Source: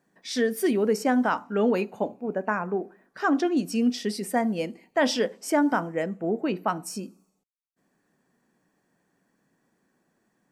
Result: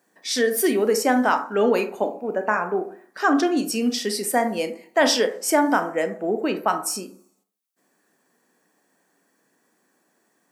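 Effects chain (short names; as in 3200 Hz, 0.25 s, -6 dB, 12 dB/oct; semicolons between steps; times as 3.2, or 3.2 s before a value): HPF 290 Hz 12 dB/oct; high shelf 5700 Hz +8.5 dB; reverb RT60 0.45 s, pre-delay 22 ms, DRR 8.5 dB; gain +4.5 dB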